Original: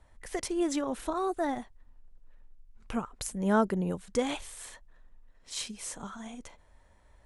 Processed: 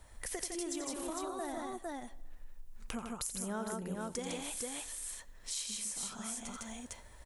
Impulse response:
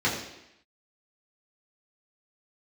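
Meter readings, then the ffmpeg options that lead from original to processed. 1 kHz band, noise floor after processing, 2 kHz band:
-8.5 dB, -55 dBFS, -6.0 dB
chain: -filter_complex "[0:a]asplit=2[s0][s1];[s1]highpass=400[s2];[1:a]atrim=start_sample=2205,adelay=68[s3];[s2][s3]afir=irnorm=-1:irlink=0,volume=0.0168[s4];[s0][s4]amix=inputs=2:normalize=0,crystalizer=i=2.5:c=0,aecho=1:1:86|156|455:0.398|0.668|0.531,acompressor=threshold=0.00794:ratio=4,volume=1.33"

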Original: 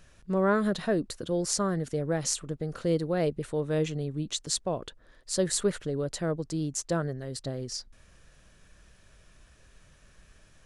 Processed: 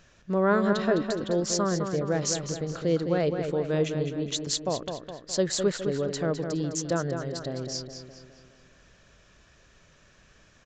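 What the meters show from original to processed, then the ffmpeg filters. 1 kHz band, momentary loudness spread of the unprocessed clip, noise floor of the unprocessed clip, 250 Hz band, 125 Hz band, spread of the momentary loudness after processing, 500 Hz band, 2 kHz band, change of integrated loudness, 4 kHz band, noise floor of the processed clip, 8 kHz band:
+3.0 dB, 9 LU, -59 dBFS, +2.5 dB, +1.5 dB, 9 LU, +3.0 dB, +3.0 dB, +2.0 dB, +2.5 dB, -59 dBFS, 0.0 dB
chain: -filter_complex "[0:a]asplit=2[s0][s1];[s1]adelay=208,lowpass=f=4600:p=1,volume=0.473,asplit=2[s2][s3];[s3]adelay=208,lowpass=f=4600:p=1,volume=0.53,asplit=2[s4][s5];[s5]adelay=208,lowpass=f=4600:p=1,volume=0.53,asplit=2[s6][s7];[s7]adelay=208,lowpass=f=4600:p=1,volume=0.53,asplit=2[s8][s9];[s9]adelay=208,lowpass=f=4600:p=1,volume=0.53,asplit=2[s10][s11];[s11]adelay=208,lowpass=f=4600:p=1,volume=0.53,asplit=2[s12][s13];[s13]adelay=208,lowpass=f=4600:p=1,volume=0.53[s14];[s0][s2][s4][s6][s8][s10][s12][s14]amix=inputs=8:normalize=0,aresample=16000,aresample=44100,lowshelf=f=72:g=-10.5,volume=1.26"

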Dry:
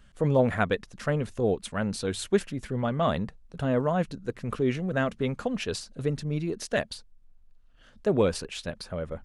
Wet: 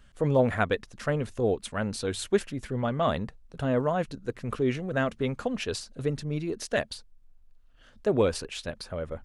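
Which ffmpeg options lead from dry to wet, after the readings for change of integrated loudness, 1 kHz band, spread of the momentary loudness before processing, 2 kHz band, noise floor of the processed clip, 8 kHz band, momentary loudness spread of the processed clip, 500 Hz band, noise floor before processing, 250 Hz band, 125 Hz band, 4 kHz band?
-0.5 dB, 0.0 dB, 10 LU, 0.0 dB, -56 dBFS, 0.0 dB, 10 LU, 0.0 dB, -56 dBFS, -1.5 dB, -1.5 dB, 0.0 dB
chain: -af "equalizer=f=180:t=o:w=0.38:g=-5.5"

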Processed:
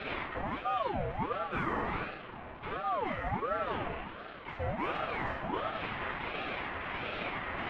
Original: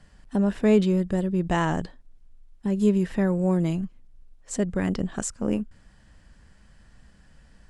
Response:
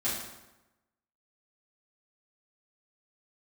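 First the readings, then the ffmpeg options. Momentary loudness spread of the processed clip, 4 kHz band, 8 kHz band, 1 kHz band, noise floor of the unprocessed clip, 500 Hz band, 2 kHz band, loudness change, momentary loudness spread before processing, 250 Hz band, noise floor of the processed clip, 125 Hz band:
8 LU, -0.5 dB, under -35 dB, +2.5 dB, -55 dBFS, -9.5 dB, +2.0 dB, -10.5 dB, 11 LU, -17.5 dB, -46 dBFS, -13.5 dB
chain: -filter_complex "[0:a]aeval=exprs='val(0)+0.5*0.0422*sgn(val(0))':c=same,highpass=f=480:t=q:w=0.5412,highpass=f=480:t=q:w=1.307,lowpass=f=2800:t=q:w=0.5176,lowpass=f=2800:t=q:w=0.7071,lowpass=f=2800:t=q:w=1.932,afreqshift=-200,asplit=2[s0][s1];[s1]volume=33.5,asoftclip=hard,volume=0.0299,volume=0.316[s2];[s0][s2]amix=inputs=2:normalize=0[s3];[1:a]atrim=start_sample=2205,afade=t=out:st=0.34:d=0.01,atrim=end_sample=15435[s4];[s3][s4]afir=irnorm=-1:irlink=0,areverse,acompressor=threshold=0.0316:ratio=4,areverse,aeval=exprs='val(0)*sin(2*PI*650*n/s+650*0.55/1.4*sin(2*PI*1.4*n/s))':c=same"

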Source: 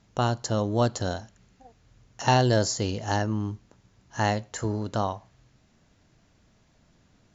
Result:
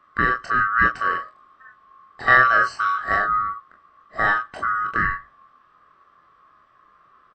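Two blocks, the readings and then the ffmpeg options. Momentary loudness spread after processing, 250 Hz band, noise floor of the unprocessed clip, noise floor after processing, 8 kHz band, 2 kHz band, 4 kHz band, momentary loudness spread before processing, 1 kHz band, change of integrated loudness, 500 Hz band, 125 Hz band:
13 LU, -7.5 dB, -63 dBFS, -57 dBFS, no reading, +17.5 dB, -4.5 dB, 12 LU, +9.0 dB, +7.0 dB, -5.0 dB, -11.0 dB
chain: -filter_complex "[0:a]afftfilt=real='real(if(lt(b,960),b+48*(1-2*mod(floor(b/48),2)),b),0)':imag='imag(if(lt(b,960),b+48*(1-2*mod(floor(b/48),2)),b),0)':win_size=2048:overlap=0.75,lowpass=2000,asplit=2[s0][s1];[s1]aecho=0:1:24|40:0.596|0.376[s2];[s0][s2]amix=inputs=2:normalize=0,volume=1.78"

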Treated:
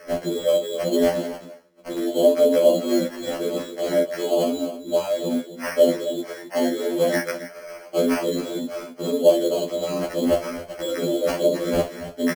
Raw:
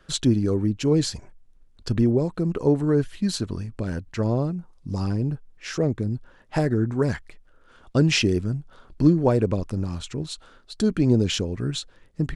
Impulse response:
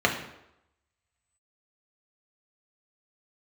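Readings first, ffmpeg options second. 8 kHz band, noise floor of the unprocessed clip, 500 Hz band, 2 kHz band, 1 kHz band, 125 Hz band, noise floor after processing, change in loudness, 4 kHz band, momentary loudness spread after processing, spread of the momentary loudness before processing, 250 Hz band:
0.0 dB, -55 dBFS, +7.5 dB, +2.0 dB, +4.5 dB, -15.0 dB, -43 dBFS, +1.5 dB, -1.0 dB, 12 LU, 13 LU, -2.0 dB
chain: -filter_complex "[0:a]acrossover=split=600|3600[s0][s1][s2];[s0]acompressor=threshold=0.0891:ratio=4[s3];[s1]acompressor=threshold=0.0141:ratio=4[s4];[s2]acompressor=threshold=0.0141:ratio=4[s5];[s3][s4][s5]amix=inputs=3:normalize=0[s6];[1:a]atrim=start_sample=2205,atrim=end_sample=3087[s7];[s6][s7]afir=irnorm=-1:irlink=0,areverse,acompressor=threshold=0.0708:ratio=5,areverse,aecho=1:1:267:0.237,aeval=exprs='val(0)*sin(2*PI*100*n/s)':c=same,highpass=f=230:w=0.5412,highpass=f=230:w=1.3066,acrusher=samples=12:mix=1:aa=0.000001,equalizer=f=590:w=5.9:g=14,acrusher=bits=8:mode=log:mix=0:aa=0.000001,afftfilt=real='re*2*eq(mod(b,4),0)':imag='im*2*eq(mod(b,4),0)':win_size=2048:overlap=0.75,volume=2.51"

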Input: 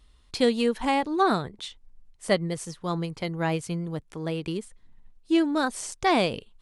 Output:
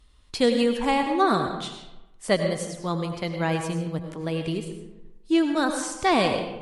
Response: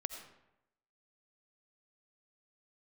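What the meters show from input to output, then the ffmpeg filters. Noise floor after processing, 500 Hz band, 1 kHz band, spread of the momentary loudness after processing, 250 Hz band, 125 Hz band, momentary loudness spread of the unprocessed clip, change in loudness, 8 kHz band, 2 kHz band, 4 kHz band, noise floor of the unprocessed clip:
-53 dBFS, +2.0 dB, +2.0 dB, 13 LU, +2.0 dB, +2.0 dB, 12 LU, +2.0 dB, +2.5 dB, +2.0 dB, +2.0 dB, -59 dBFS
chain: -filter_complex "[1:a]atrim=start_sample=2205,asetrate=38367,aresample=44100[s0];[0:a][s0]afir=irnorm=-1:irlink=0,volume=1.33" -ar 44100 -c:a libmp3lame -b:a 56k

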